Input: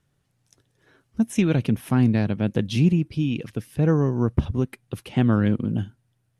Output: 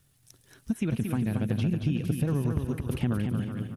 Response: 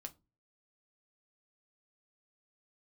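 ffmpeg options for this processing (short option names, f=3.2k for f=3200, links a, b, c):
-filter_complex "[0:a]equalizer=f=6.4k:w=2:g=-2.5,atempo=1.7,lowshelf=f=180:g=8,asplit=2[a][b];[b]aecho=0:1:376:0.133[c];[a][c]amix=inputs=2:normalize=0,acrossover=split=2600[d][e];[e]acompressor=threshold=-54dB:ratio=4:attack=1:release=60[f];[d][f]amix=inputs=2:normalize=0,crystalizer=i=5:c=0,acompressor=threshold=-24dB:ratio=6,asplit=2[g][h];[h]aecho=0:1:228|456|684|912|1140:0.531|0.218|0.0892|0.0366|0.015[i];[g][i]amix=inputs=2:normalize=0,volume=-1.5dB"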